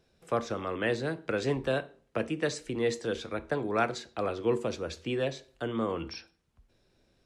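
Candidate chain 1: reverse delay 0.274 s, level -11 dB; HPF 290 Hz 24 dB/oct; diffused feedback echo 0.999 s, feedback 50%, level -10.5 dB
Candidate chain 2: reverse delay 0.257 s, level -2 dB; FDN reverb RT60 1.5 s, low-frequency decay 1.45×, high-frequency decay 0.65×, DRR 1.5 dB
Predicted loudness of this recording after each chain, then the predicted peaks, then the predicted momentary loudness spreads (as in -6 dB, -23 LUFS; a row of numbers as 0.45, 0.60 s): -32.5, -27.5 LUFS; -14.0, -12.0 dBFS; 10, 7 LU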